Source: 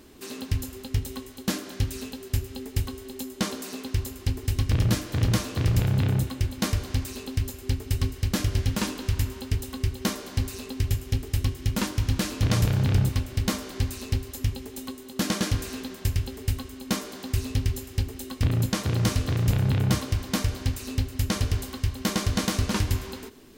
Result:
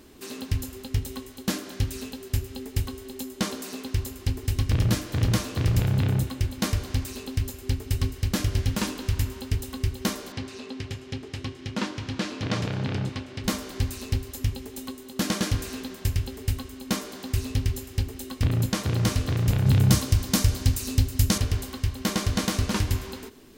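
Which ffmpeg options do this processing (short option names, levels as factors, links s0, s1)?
-filter_complex "[0:a]asettb=1/sr,asplit=3[s0][s1][s2];[s0]atrim=end=10.324[s3];[s1]atrim=start=10.32:end=13.44,asetpts=PTS-STARTPTS,afade=t=in:d=0.004:c=qsin,afade=t=out:st=3.116:d=0.004:c=qsin,highpass=170,lowpass=4700[s4];[s2]atrim=start=13.436[s5];[s3][s4]acrossfade=d=0.004:c1=hsin:c2=qsin[s6];[s6][s5]acrossfade=d=0.004:c1=qsin:c2=hsin,asettb=1/sr,asplit=3[s7][s8][s9];[s7]atrim=end=19.664[s10];[s8]atrim=start=19.66:end=21.38,asetpts=PTS-STARTPTS,afade=t=in:d=0.004:c=qsin,afade=t=out:st=1.716:d=0.004:c=qsin,bass=f=250:g=5,treble=f=4000:g=8[s11];[s9]atrim=start=21.376[s12];[s10][s11]acrossfade=d=0.004:c1=hsin:c2=qsin[s13];[s13][s12]acrossfade=d=0.004:c1=qsin:c2=hsin"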